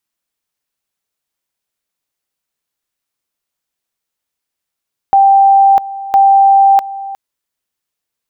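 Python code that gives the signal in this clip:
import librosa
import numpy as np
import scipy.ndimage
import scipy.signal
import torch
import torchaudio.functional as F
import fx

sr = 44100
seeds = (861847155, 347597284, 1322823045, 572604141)

y = fx.two_level_tone(sr, hz=786.0, level_db=-4.0, drop_db=17.0, high_s=0.65, low_s=0.36, rounds=2)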